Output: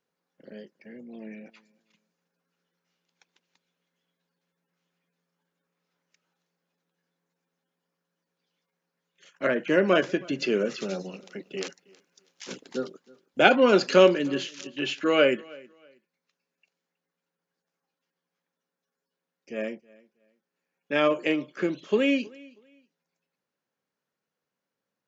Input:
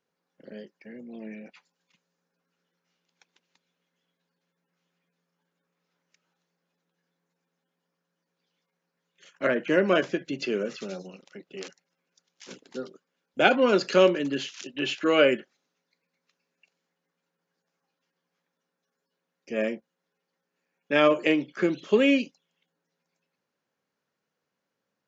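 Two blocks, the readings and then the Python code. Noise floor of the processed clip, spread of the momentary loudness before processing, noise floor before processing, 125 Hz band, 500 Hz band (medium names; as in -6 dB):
under -85 dBFS, 20 LU, -83 dBFS, +1.0 dB, +0.5 dB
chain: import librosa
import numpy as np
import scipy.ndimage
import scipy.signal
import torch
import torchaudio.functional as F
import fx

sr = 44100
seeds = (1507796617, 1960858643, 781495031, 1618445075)

y = fx.rider(x, sr, range_db=10, speed_s=2.0)
y = fx.echo_feedback(y, sr, ms=319, feedback_pct=25, wet_db=-24)
y = y * librosa.db_to_amplitude(-1.0)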